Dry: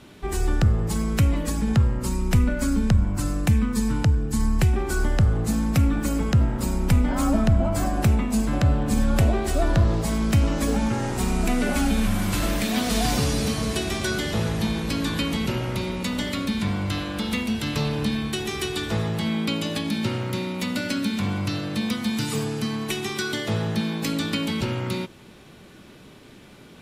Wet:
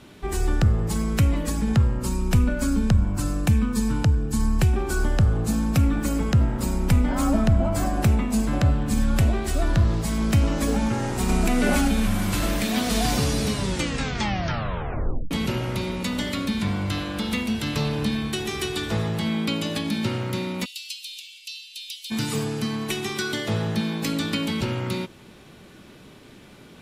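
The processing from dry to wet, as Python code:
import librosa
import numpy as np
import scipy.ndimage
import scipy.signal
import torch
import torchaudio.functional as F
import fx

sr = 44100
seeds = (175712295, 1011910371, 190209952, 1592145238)

y = fx.notch(x, sr, hz=2000.0, q=11.0, at=(1.86, 5.83))
y = fx.peak_eq(y, sr, hz=570.0, db=-5.5, octaves=1.5, at=(8.7, 10.18))
y = fx.env_flatten(y, sr, amount_pct=100, at=(11.29, 11.88))
y = fx.cheby1_highpass(y, sr, hz=2700.0, order=5, at=(20.64, 22.1), fade=0.02)
y = fx.edit(y, sr, fx.tape_stop(start_s=13.43, length_s=1.88), tone=tone)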